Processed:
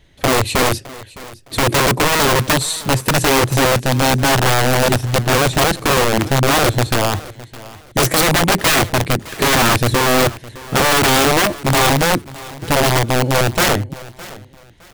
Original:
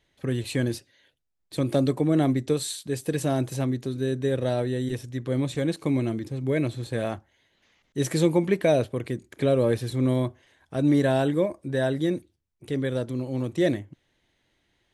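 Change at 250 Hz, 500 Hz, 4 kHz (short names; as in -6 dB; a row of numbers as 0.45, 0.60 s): +5.0, +8.0, +21.0 dB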